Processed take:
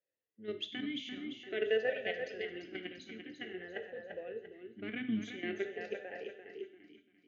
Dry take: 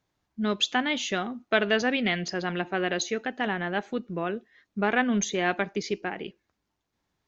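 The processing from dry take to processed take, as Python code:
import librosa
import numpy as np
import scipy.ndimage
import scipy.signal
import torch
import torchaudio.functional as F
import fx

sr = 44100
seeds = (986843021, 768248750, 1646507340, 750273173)

p1 = fx.octave_divider(x, sr, octaves=1, level_db=-6.0)
p2 = fx.dynamic_eq(p1, sr, hz=730.0, q=4.2, threshold_db=-42.0, ratio=4.0, max_db=5)
p3 = fx.level_steps(p2, sr, step_db=12)
p4 = p3 + fx.echo_feedback(p3, sr, ms=343, feedback_pct=44, wet_db=-7.0, dry=0)
p5 = fx.rev_gated(p4, sr, seeds[0], gate_ms=190, shape='falling', drr_db=6.5)
p6 = fx.vowel_sweep(p5, sr, vowels='e-i', hz=0.49)
y = p6 * librosa.db_to_amplitude(1.5)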